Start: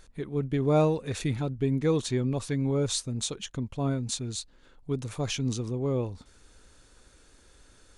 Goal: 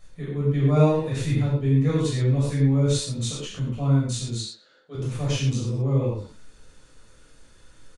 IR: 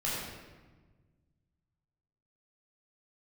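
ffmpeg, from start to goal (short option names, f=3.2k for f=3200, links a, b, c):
-filter_complex "[0:a]asettb=1/sr,asplit=3[a][b][c];[a]atrim=end=4.394[d];[b]atrim=start=4.39:end=4.95,asetpts=PTS-STARTPTS,afade=t=in:d=0.004:c=qsin,afade=t=out:st=0.556:d=0.004:c=qsin,highpass=420,equalizer=f=550:t=q:w=4:g=4,equalizer=f=1k:t=q:w=4:g=-10,equalizer=f=1.5k:t=q:w=4:g=5,equalizer=f=2.5k:t=q:w=4:g=-7,equalizer=f=4.3k:t=q:w=4:g=8,lowpass=f=7.3k:w=0.5412,lowpass=f=7.3k:w=1.3066[e];[c]atrim=start=4.946[f];[d][e]acrossfade=d=0.004:c1=hsin:c2=qsin[g];[g][f]acrossfade=d=0.004:c1=qsin:c2=hsin,asplit=2[h][i];[i]adelay=130,highpass=300,lowpass=3.4k,asoftclip=type=hard:threshold=-23dB,volume=-15dB[j];[h][j]amix=inputs=2:normalize=0[k];[1:a]atrim=start_sample=2205,atrim=end_sample=6174[l];[k][l]afir=irnorm=-1:irlink=0,volume=-3dB"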